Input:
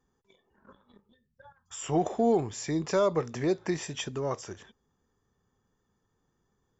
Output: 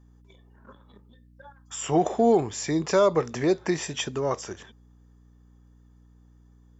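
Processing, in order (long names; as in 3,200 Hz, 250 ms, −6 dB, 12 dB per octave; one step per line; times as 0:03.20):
low-shelf EQ 140 Hz −6.5 dB
mains hum 60 Hz, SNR 27 dB
level +5.5 dB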